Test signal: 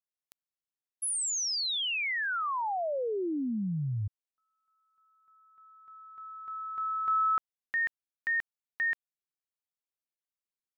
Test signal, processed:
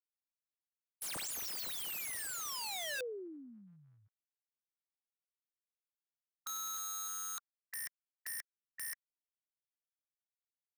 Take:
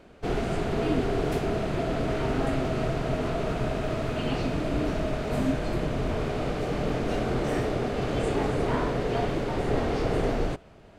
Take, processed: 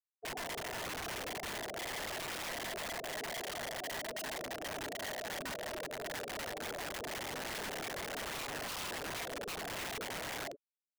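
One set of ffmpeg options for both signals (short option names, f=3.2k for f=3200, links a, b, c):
-af "afftfilt=real='re*gte(hypot(re,im),0.0891)':imag='im*gte(hypot(re,im),0.0891)':win_size=1024:overlap=0.75,highpass=f=1.4k:t=q:w=1.8,acompressor=threshold=-41dB:ratio=16:attack=1.3:release=77:knee=1:detection=rms,aeval=exprs='(mod(178*val(0)+1,2)-1)/178':c=same,volume=9dB"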